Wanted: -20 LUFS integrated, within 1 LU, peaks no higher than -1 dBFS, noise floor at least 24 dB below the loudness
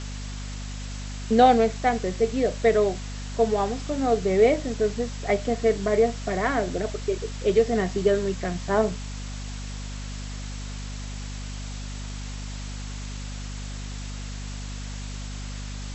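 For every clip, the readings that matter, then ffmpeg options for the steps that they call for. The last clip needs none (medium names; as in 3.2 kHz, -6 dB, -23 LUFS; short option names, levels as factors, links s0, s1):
hum 50 Hz; highest harmonic 250 Hz; hum level -32 dBFS; noise floor -34 dBFS; noise floor target -51 dBFS; loudness -26.5 LUFS; peak level -6.0 dBFS; loudness target -20.0 LUFS
-> -af "bandreject=f=50:t=h:w=4,bandreject=f=100:t=h:w=4,bandreject=f=150:t=h:w=4,bandreject=f=200:t=h:w=4,bandreject=f=250:t=h:w=4"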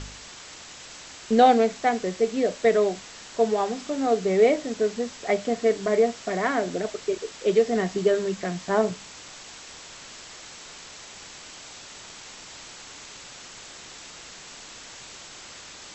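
hum not found; noise floor -44 dBFS; noise floor target -48 dBFS
-> -af "afftdn=nr=6:nf=-44"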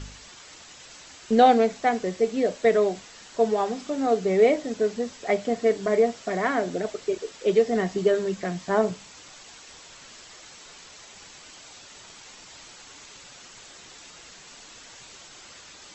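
noise floor -48 dBFS; loudness -24.0 LUFS; peak level -6.0 dBFS; loudness target -20.0 LUFS
-> -af "volume=1.58"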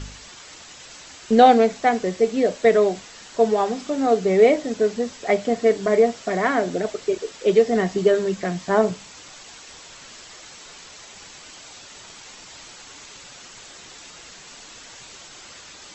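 loudness -20.0 LUFS; peak level -2.0 dBFS; noise floor -44 dBFS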